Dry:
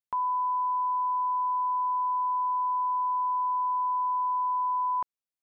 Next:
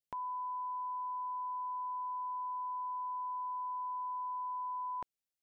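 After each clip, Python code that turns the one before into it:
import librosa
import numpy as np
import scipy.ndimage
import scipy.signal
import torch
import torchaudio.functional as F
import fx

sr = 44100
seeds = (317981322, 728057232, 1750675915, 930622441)

y = fx.peak_eq(x, sr, hz=1100.0, db=-13.5, octaves=0.72)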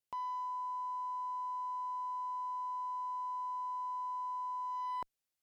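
y = fx.rider(x, sr, range_db=3, speed_s=0.5)
y = fx.clip_asym(y, sr, top_db=-36.5, bottom_db=-34.0)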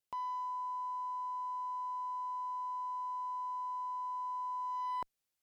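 y = fx.rider(x, sr, range_db=3, speed_s=2.0)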